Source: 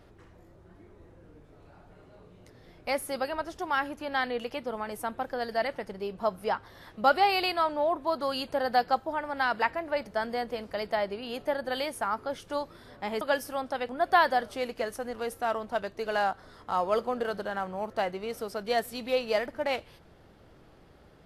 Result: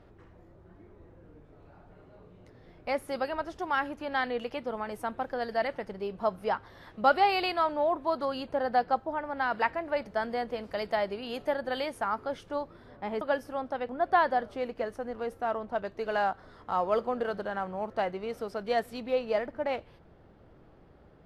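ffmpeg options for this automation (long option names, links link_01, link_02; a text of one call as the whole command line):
ffmpeg -i in.wav -af "asetnsamples=nb_out_samples=441:pad=0,asendcmd='3.08 lowpass f 3400;8.25 lowpass f 1500;9.52 lowpass f 3300;10.64 lowpass f 7100;11.54 lowpass f 3200;12.49 lowpass f 1300;15.85 lowpass f 2400;19 lowpass f 1300',lowpass=frequency=2100:poles=1" out.wav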